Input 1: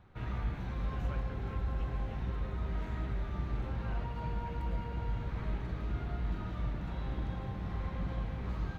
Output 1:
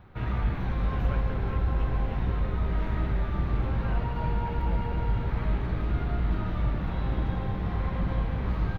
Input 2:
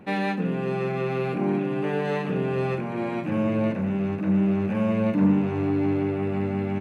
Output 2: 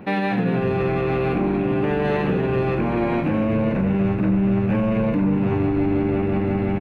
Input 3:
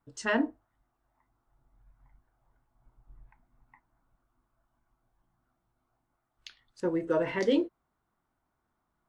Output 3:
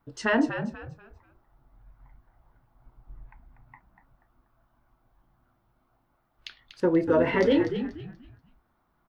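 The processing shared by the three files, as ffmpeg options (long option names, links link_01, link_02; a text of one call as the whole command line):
ffmpeg -i in.wav -filter_complex "[0:a]alimiter=limit=-21.5dB:level=0:latency=1:release=61,equalizer=frequency=7700:width_type=o:width=0.94:gain=-12,asplit=5[link_01][link_02][link_03][link_04][link_05];[link_02]adelay=241,afreqshift=-76,volume=-9dB[link_06];[link_03]adelay=482,afreqshift=-152,volume=-19.2dB[link_07];[link_04]adelay=723,afreqshift=-228,volume=-29.3dB[link_08];[link_05]adelay=964,afreqshift=-304,volume=-39.5dB[link_09];[link_01][link_06][link_07][link_08][link_09]amix=inputs=5:normalize=0,volume=8dB" out.wav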